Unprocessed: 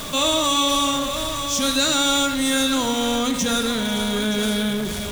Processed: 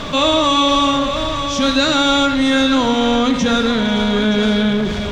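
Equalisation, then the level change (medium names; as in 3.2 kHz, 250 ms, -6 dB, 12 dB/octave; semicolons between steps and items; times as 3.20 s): distance through air 180 m; +7.5 dB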